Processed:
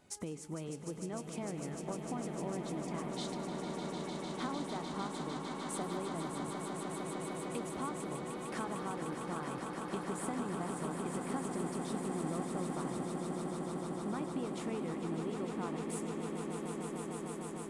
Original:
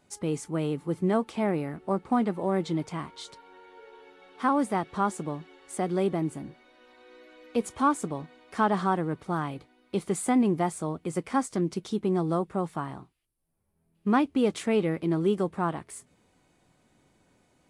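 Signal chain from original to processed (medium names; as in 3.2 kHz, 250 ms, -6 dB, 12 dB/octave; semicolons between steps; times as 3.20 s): compression 6:1, threshold -40 dBFS, peak gain reduction 20 dB; on a send: echo with a slow build-up 151 ms, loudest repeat 8, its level -8 dB; on the sum: modulated delay 101 ms, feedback 73%, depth 206 cents, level -19.5 dB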